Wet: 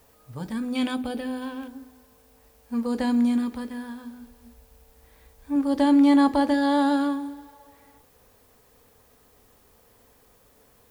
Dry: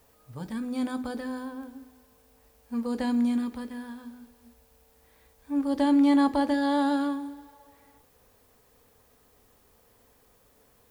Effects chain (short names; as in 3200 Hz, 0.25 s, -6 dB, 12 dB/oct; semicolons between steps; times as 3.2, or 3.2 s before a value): 0.75–1.68 bell 2800 Hz +14.5 dB 0.77 oct; 0.95–1.42 spectral gain 850–8400 Hz -6 dB; 4.17–5.56 low shelf 72 Hz +10.5 dB; gain +3.5 dB